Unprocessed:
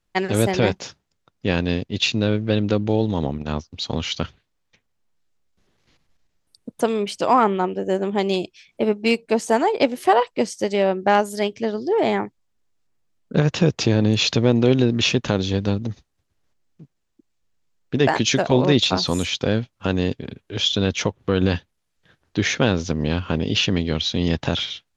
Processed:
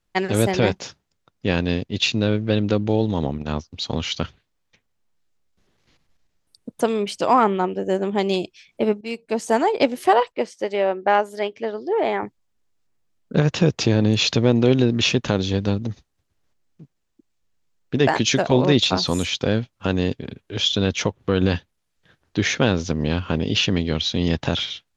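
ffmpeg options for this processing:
ffmpeg -i in.wav -filter_complex "[0:a]asettb=1/sr,asplit=3[link_01][link_02][link_03];[link_01]atrim=end=10.324[link_04];[link_02]atrim=start=10.32:end=12.23,asetpts=PTS-STARTPTS,afade=type=in:duration=0.004:curve=qsin,afade=type=out:start_time=1.906:duration=0.004:curve=qsin,bass=frequency=250:gain=-14,treble=frequency=4000:gain=-13[link_05];[link_03]atrim=start=12.226[link_06];[link_04][link_05]acrossfade=duration=0.004:curve1=hsin:curve2=qsin[link_07];[link_07][link_06]acrossfade=duration=0.004:curve1=qsin:curve2=hsin,asplit=2[link_08][link_09];[link_08]atrim=end=9.01,asetpts=PTS-STARTPTS,afade=type=out:start_time=9.006:duration=0.004:curve=hsin:silence=0.158489[link_10];[link_09]atrim=start=9.01,asetpts=PTS-STARTPTS,afade=type=in:duration=0.57:silence=0.158489[link_11];[link_10][link_11]concat=n=2:v=0:a=1" out.wav

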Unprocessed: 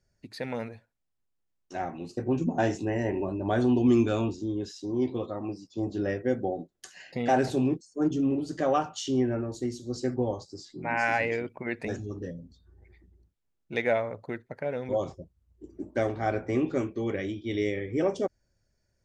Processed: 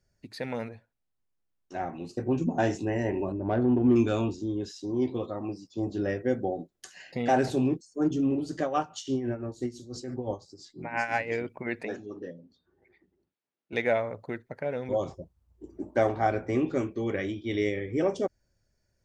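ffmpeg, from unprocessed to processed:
ffmpeg -i in.wav -filter_complex "[0:a]asettb=1/sr,asplit=3[link_01][link_02][link_03];[link_01]atrim=end=0.694[link_04];[link_02]atrim=start=0.69:end=1.93,asetpts=PTS-STARTPTS,afade=type=in:duration=0.004:curve=qsin,afade=type=out:start_time=1.236:duration=0.004:curve=qsin,highshelf=frequency=3700:gain=-7[link_05];[link_03]atrim=start=1.926[link_06];[link_04][link_05]acrossfade=duration=0.004:curve1=hsin:curve2=qsin[link_07];[link_07][link_06]acrossfade=duration=0.004:curve1=qsin:curve2=hsin,asettb=1/sr,asplit=3[link_08][link_09][link_10];[link_08]atrim=end=3.324[link_11];[link_09]atrim=start=3.32:end=3.96,asetpts=PTS-STARTPTS,afade=type=in:duration=0.004:curve=qsin,afade=type=out:start_time=0.636:duration=0.004:curve=qsin,adynamicsmooth=sensitivity=0.5:basefreq=950[link_12];[link_10]atrim=start=3.956[link_13];[link_11][link_12]acrossfade=duration=0.004:curve1=hsin:curve2=qsin[link_14];[link_14][link_13]acrossfade=duration=0.004:curve1=qsin:curve2=hsin,asettb=1/sr,asplit=3[link_15][link_16][link_17];[link_15]atrim=end=8.624[link_18];[link_16]atrim=start=8.62:end=11.31,asetpts=PTS-STARTPTS,afade=type=in:duration=0.004:curve=qsin,afade=type=out:start_time=2.686:duration=0.004:curve=qsin,tremolo=f=5.9:d=0.73[link_19];[link_17]atrim=start=11.306[link_20];[link_18][link_19]acrossfade=duration=0.004:curve1=hsin:curve2=qsin[link_21];[link_21][link_20]acrossfade=duration=0.004:curve1=qsin:curve2=hsin,asettb=1/sr,asplit=3[link_22][link_23][link_24];[link_22]atrim=end=11.834[link_25];[link_23]atrim=start=11.83:end=13.73,asetpts=PTS-STARTPTS,afade=type=in:duration=0.004:curve=qsin,afade=type=out:start_time=1.896:duration=0.004:curve=qsin,highpass=270,lowpass=3900[link_26];[link_24]atrim=start=13.726[link_27];[link_25][link_26]acrossfade=duration=0.004:curve1=hsin:curve2=qsin[link_28];[link_28][link_27]acrossfade=duration=0.004:curve1=qsin:curve2=hsin,asettb=1/sr,asplit=3[link_29][link_30][link_31];[link_29]atrim=end=15.124[link_32];[link_30]atrim=start=15.12:end=16.27,asetpts=PTS-STARTPTS,afade=type=in:duration=0.004:curve=qsin,afade=type=out:start_time=1.146:duration=0.004:curve=qsin,equalizer=frequency=870:width=1.2:gain=7.5[link_33];[link_31]atrim=start=16.266[link_34];[link_32][link_33]acrossfade=duration=0.004:curve1=hsin:curve2=qsin[link_35];[link_35][link_34]acrossfade=duration=0.004:curve1=qsin:curve2=hsin,asettb=1/sr,asplit=3[link_36][link_37][link_38];[link_36]atrim=end=17.144[link_39];[link_37]atrim=start=17.14:end=17.69,asetpts=PTS-STARTPTS,afade=type=in:duration=0.004:curve=qsin,afade=type=out:start_time=0.546:duration=0.004:curve=qsin,equalizer=frequency=1200:width=0.9:gain=5[link_40];[link_38]atrim=start=17.686[link_41];[link_39][link_40]acrossfade=duration=0.004:curve1=hsin:curve2=qsin[link_42];[link_42][link_41]acrossfade=duration=0.004:curve1=qsin:curve2=hsin" out.wav

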